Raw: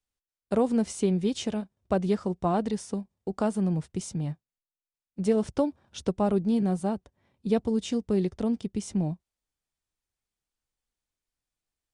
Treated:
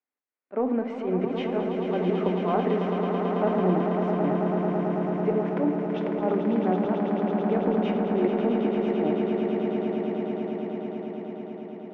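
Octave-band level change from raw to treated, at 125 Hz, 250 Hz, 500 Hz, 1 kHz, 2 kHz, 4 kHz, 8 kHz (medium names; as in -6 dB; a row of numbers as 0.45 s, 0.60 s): +1.5 dB, +3.0 dB, +5.5 dB, +6.0 dB, +8.0 dB, no reading, under -25 dB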